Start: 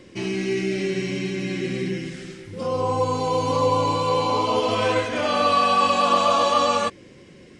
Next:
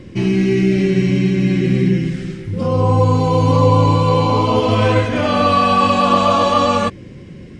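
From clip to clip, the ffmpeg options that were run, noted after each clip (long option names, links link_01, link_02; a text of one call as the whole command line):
ffmpeg -i in.wav -af "bass=frequency=250:gain=13,treble=frequency=4000:gain=-5,volume=4.5dB" out.wav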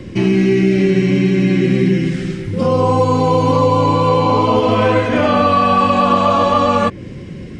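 ffmpeg -i in.wav -filter_complex "[0:a]acrossover=split=180|2600[link_01][link_02][link_03];[link_01]acompressor=threshold=-30dB:ratio=4[link_04];[link_02]acompressor=threshold=-16dB:ratio=4[link_05];[link_03]acompressor=threshold=-41dB:ratio=4[link_06];[link_04][link_05][link_06]amix=inputs=3:normalize=0,volume=5.5dB" out.wav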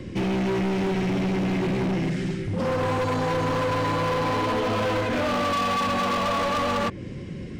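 ffmpeg -i in.wav -af "asoftclip=type=hard:threshold=-17.5dB,volume=-5dB" out.wav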